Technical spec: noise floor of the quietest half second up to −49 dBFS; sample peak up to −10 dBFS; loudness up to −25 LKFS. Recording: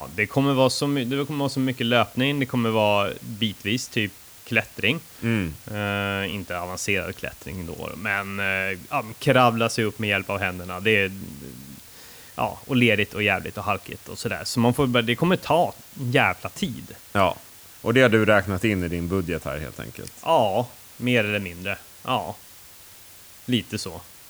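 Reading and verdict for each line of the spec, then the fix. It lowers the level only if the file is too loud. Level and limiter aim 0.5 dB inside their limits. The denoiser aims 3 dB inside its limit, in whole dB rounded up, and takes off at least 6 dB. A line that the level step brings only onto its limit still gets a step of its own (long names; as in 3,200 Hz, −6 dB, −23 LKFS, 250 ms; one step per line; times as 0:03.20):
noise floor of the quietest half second −46 dBFS: out of spec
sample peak −4.5 dBFS: out of spec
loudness −23.5 LKFS: out of spec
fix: broadband denoise 6 dB, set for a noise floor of −46 dBFS
level −2 dB
brickwall limiter −10.5 dBFS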